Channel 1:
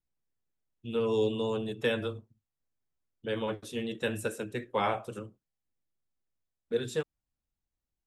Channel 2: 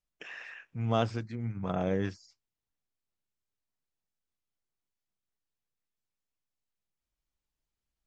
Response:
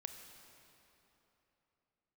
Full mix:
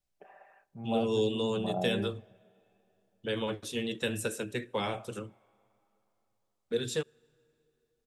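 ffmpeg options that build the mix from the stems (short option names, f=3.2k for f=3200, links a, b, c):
-filter_complex "[0:a]volume=0dB,asplit=2[a][b];[b]volume=-21.5dB[c];[1:a]lowpass=f=720:t=q:w=4.9,aecho=1:1:5.1:0.71,volume=-8.5dB,asplit=2[d][e];[e]volume=-17.5dB[f];[2:a]atrim=start_sample=2205[g];[c][f]amix=inputs=2:normalize=0[h];[h][g]afir=irnorm=-1:irlink=0[i];[a][d][i]amix=inputs=3:normalize=0,equalizer=f=5.5k:w=0.38:g=5.5,acrossover=split=470|3000[j][k][l];[k]acompressor=threshold=-35dB:ratio=6[m];[j][m][l]amix=inputs=3:normalize=0"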